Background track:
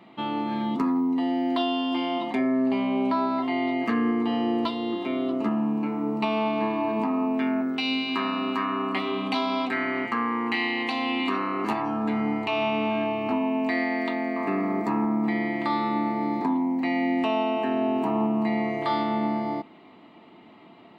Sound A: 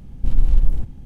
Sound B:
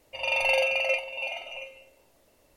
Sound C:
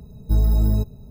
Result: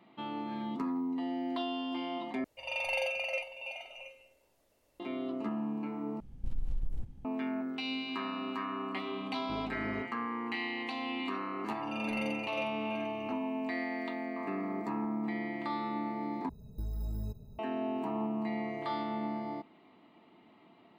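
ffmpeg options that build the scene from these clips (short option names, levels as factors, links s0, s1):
-filter_complex "[2:a]asplit=2[s0][s1];[3:a]asplit=2[s2][s3];[0:a]volume=0.316[s4];[1:a]acompressor=threshold=0.2:ratio=6:attack=3.2:release=140:knee=1:detection=peak[s5];[s2]highpass=260,lowpass=2500[s6];[s3]acompressor=threshold=0.0631:ratio=6:attack=3.2:release=140:knee=1:detection=peak[s7];[s4]asplit=4[s8][s9][s10][s11];[s8]atrim=end=2.444[s12];[s0]atrim=end=2.56,asetpts=PTS-STARTPTS,volume=0.355[s13];[s9]atrim=start=4.996:end=6.204[s14];[s5]atrim=end=1.05,asetpts=PTS-STARTPTS,volume=0.224[s15];[s10]atrim=start=7.246:end=16.494[s16];[s7]atrim=end=1.1,asetpts=PTS-STARTPTS,volume=0.335[s17];[s11]atrim=start=17.586[s18];[s6]atrim=end=1.1,asetpts=PTS-STARTPTS,volume=0.355,afade=t=in:d=0.004:c=hsin,afade=t=out:st=1.096:d=0.004:c=hsin,adelay=9190[s19];[s1]atrim=end=2.56,asetpts=PTS-STARTPTS,volume=0.178,afade=t=in:d=0.004:c=hsin,afade=t=out:st=2.556:d=0.004:c=hsin,adelay=11680[s20];[s12][s13]acrossfade=d=0.004:c1=hsin:c2=hsin[s21];[s21][s14]acrossfade=d=0.004:c1=hsin:c2=hsin[s22];[s22][s15]acrossfade=d=0.004:c1=hsin:c2=hsin[s23];[s23][s16]acrossfade=d=0.004:c1=hsin:c2=hsin[s24];[s24][s17]acrossfade=d=0.004:c1=hsin:c2=hsin[s25];[s25][s18]acrossfade=d=0.004:c1=hsin:c2=hsin[s26];[s26][s19][s20]amix=inputs=3:normalize=0"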